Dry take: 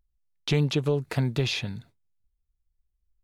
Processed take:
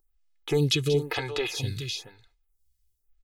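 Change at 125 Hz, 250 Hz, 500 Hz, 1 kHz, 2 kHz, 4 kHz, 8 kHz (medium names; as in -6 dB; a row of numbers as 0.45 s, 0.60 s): -3.0 dB, -2.0 dB, +2.5 dB, +2.0 dB, +1.5 dB, +2.5 dB, +5.5 dB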